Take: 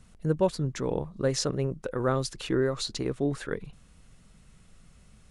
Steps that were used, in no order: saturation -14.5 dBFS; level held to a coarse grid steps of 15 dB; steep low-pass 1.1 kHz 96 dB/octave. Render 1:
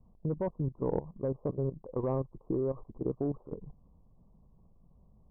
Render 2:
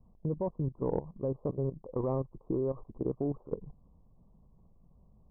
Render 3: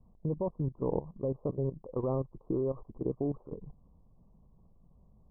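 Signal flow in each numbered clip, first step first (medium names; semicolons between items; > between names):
steep low-pass > saturation > level held to a coarse grid; steep low-pass > level held to a coarse grid > saturation; saturation > steep low-pass > level held to a coarse grid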